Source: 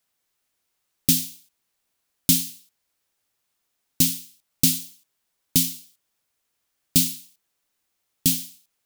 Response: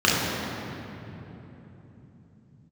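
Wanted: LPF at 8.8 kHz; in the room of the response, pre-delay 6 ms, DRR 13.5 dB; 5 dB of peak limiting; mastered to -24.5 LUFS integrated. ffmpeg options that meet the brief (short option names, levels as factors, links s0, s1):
-filter_complex "[0:a]lowpass=8800,alimiter=limit=0.299:level=0:latency=1,asplit=2[s0][s1];[1:a]atrim=start_sample=2205,adelay=6[s2];[s1][s2]afir=irnorm=-1:irlink=0,volume=0.0188[s3];[s0][s3]amix=inputs=2:normalize=0,volume=1.58"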